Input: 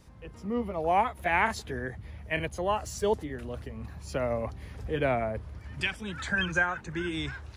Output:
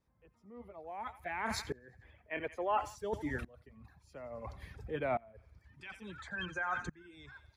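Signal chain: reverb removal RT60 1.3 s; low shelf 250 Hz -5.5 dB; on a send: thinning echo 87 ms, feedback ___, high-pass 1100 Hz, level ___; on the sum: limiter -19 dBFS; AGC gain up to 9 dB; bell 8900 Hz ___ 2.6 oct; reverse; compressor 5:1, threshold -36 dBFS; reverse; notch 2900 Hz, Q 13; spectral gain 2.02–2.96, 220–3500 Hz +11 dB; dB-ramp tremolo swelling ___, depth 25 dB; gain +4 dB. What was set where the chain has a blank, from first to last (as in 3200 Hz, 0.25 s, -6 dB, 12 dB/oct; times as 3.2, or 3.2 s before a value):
64%, -17.5 dB, -8 dB, 0.58 Hz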